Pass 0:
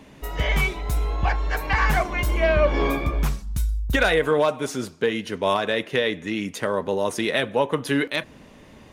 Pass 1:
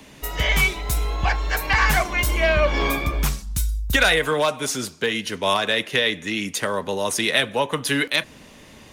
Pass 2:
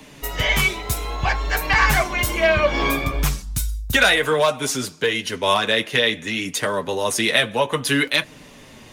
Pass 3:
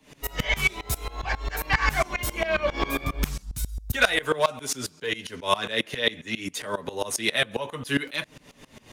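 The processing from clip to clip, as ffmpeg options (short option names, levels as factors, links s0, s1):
-filter_complex "[0:a]highshelf=f=2300:g=10.5,acrossover=split=320|470|4500[s0][s1][s2][s3];[s1]acompressor=threshold=0.0112:ratio=6[s4];[s0][s4][s2][s3]amix=inputs=4:normalize=0"
-af "flanger=delay=6.5:depth=2.8:regen=-33:speed=0.6:shape=triangular,volume=1.88"
-af "aeval=exprs='val(0)*pow(10,-21*if(lt(mod(-7.4*n/s,1),2*abs(-7.4)/1000),1-mod(-7.4*n/s,1)/(2*abs(-7.4)/1000),(mod(-7.4*n/s,1)-2*abs(-7.4)/1000)/(1-2*abs(-7.4)/1000))/20)':c=same"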